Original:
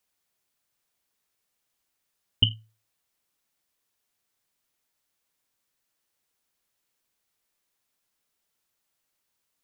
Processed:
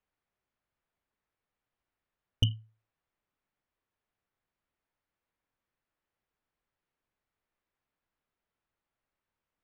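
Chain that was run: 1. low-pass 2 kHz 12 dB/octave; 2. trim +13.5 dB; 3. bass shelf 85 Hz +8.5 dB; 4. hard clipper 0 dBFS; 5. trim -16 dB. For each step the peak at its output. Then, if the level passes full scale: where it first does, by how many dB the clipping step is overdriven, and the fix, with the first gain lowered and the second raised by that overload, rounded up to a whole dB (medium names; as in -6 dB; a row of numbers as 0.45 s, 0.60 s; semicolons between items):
-10.5 dBFS, +3.0 dBFS, +3.5 dBFS, 0.0 dBFS, -16.0 dBFS; step 2, 3.5 dB; step 2 +9.5 dB, step 5 -12 dB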